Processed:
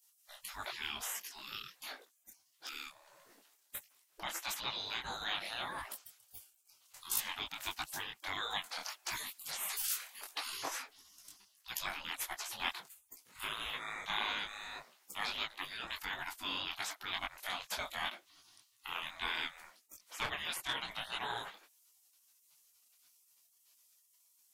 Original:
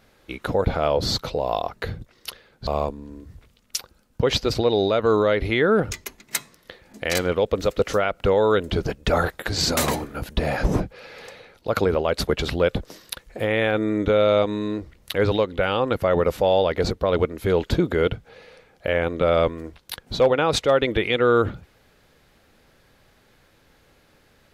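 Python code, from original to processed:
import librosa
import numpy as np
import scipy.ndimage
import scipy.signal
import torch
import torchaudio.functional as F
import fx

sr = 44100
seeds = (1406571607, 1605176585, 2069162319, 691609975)

y = fx.spec_gate(x, sr, threshold_db=-25, keep='weak')
y = fx.high_shelf(y, sr, hz=9000.0, db=7.5)
y = fx.detune_double(y, sr, cents=53)
y = y * librosa.db_to_amplitude(3.0)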